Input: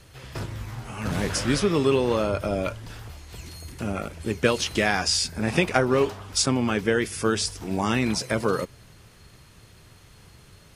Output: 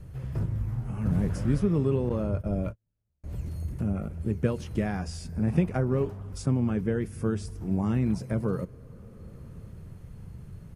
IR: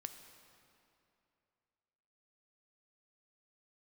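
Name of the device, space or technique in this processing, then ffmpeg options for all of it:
ducked reverb: -filter_complex "[0:a]asplit=3[s0][s1][s2];[1:a]atrim=start_sample=2205[s3];[s1][s3]afir=irnorm=-1:irlink=0[s4];[s2]apad=whole_len=474459[s5];[s4][s5]sidechaincompress=threshold=0.0141:ratio=16:attack=12:release=675,volume=2.24[s6];[s0][s6]amix=inputs=2:normalize=0,asettb=1/sr,asplit=3[s7][s8][s9];[s7]atrim=end=2.094[s10];[s8]atrim=start=2.09:end=3.24,asetpts=PTS-STARTPTS,afade=t=in:d=0.004:c=qsin,afade=t=out:st=1.146:d=0.004:c=qsin,agate=range=0.00562:threshold=0.0501:ratio=16:detection=peak[s11];[s9]atrim=start=3.236[s12];[s10][s11]acrossfade=d=0.004:c1=hsin:c2=qsin[s13];[s13][s12]acrossfade=d=0.004:c1=qsin:c2=hsin,firequalizer=gain_entry='entry(180,0);entry(270,-8);entry(840,-15);entry(3700,-27);entry(11000,-18)':delay=0.05:min_phase=1,volume=1.26"

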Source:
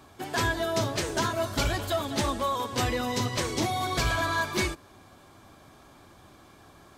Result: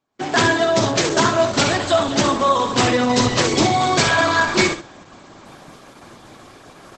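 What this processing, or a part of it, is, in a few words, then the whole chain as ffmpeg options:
video call: -filter_complex "[0:a]asplit=3[s0][s1][s2];[s0]afade=t=out:st=0.86:d=0.02[s3];[s1]highpass=f=41:p=1,afade=t=in:st=0.86:d=0.02,afade=t=out:st=1.42:d=0.02[s4];[s2]afade=t=in:st=1.42:d=0.02[s5];[s3][s4][s5]amix=inputs=3:normalize=0,highpass=f=120:w=0.5412,highpass=f=120:w=1.3066,aecho=1:1:65|130|195:0.376|0.0789|0.0166,dynaudnorm=f=120:g=3:m=4.22,agate=range=0.0562:threshold=0.00891:ratio=16:detection=peak" -ar 48000 -c:a libopus -b:a 12k

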